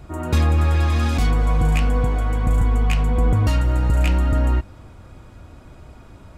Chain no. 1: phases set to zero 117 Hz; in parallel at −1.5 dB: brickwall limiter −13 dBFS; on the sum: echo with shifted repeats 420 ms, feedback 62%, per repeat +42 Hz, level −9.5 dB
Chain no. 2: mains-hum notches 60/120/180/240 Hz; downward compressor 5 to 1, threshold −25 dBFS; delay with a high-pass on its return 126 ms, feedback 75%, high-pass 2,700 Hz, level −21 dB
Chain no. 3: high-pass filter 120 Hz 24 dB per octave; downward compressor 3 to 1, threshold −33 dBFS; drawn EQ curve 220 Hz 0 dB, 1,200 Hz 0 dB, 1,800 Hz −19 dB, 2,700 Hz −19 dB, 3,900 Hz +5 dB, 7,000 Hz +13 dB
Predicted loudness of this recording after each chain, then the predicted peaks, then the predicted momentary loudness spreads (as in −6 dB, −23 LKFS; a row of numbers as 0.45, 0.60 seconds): −20.5, −29.5, −34.0 LKFS; −2.0, −16.0, −16.0 dBFS; 15, 17, 15 LU